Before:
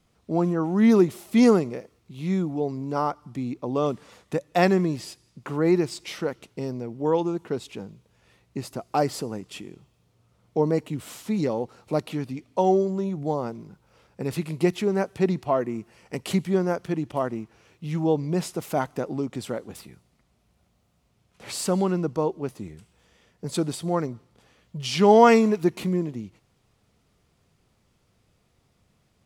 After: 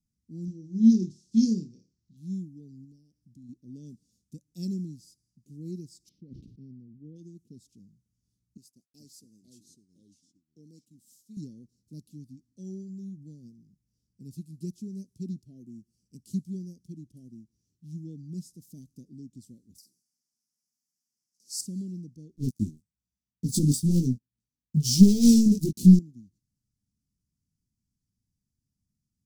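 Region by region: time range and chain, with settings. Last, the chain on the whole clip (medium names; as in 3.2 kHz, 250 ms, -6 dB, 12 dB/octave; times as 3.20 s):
0.45–2.17 s: low-pass 6.1 kHz 24 dB/octave + treble shelf 2.4 kHz +6.5 dB + flutter echo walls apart 4.6 m, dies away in 0.25 s
2.84–3.49 s: compression 10:1, threshold -30 dBFS + flutter echo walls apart 12 m, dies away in 0.23 s
6.09–7.16 s: distance through air 350 m + decay stretcher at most 43 dB/s
8.57–11.37 s: high-pass 610 Hz 6 dB/octave + ever faster or slower copies 427 ms, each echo -3 st, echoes 2, each echo -6 dB + expander -42 dBFS
19.78–21.61 s: high-pass 470 Hz + resonant high shelf 4.2 kHz +6.5 dB, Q 3 + doubling 48 ms -8 dB
22.36–25.99 s: waveshaping leveller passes 5 + chorus 1.1 Hz, delay 15 ms, depth 5.7 ms
whole clip: Chebyshev band-stop 250–5400 Hz, order 3; upward expansion 1.5:1, over -37 dBFS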